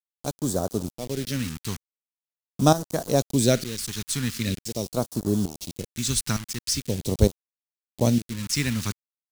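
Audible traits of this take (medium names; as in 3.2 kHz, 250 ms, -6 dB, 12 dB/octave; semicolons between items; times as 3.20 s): tremolo saw up 1.1 Hz, depth 80%; a quantiser's noise floor 6-bit, dither none; phasing stages 2, 0.43 Hz, lowest notch 540–2200 Hz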